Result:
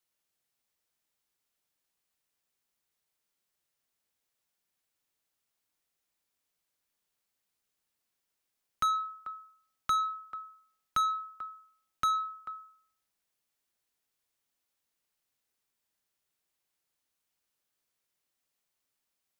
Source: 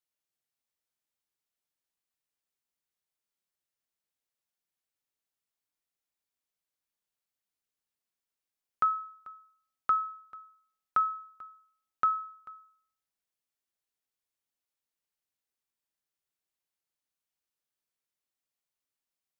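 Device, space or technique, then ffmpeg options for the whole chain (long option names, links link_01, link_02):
one-band saturation: -filter_complex "[0:a]acrossover=split=300|2100[link_01][link_02][link_03];[link_02]asoftclip=type=tanh:threshold=-35dB[link_04];[link_01][link_04][link_03]amix=inputs=3:normalize=0,volume=6.5dB"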